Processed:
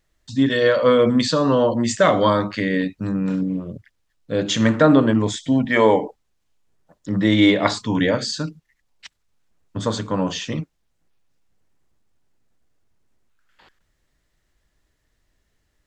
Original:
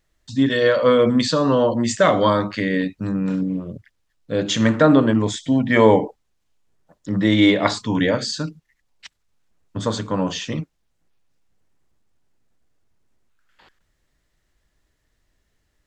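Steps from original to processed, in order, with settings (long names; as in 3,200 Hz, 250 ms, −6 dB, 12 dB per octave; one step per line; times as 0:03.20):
0:05.65–0:06.05: low-shelf EQ 190 Hz −11.5 dB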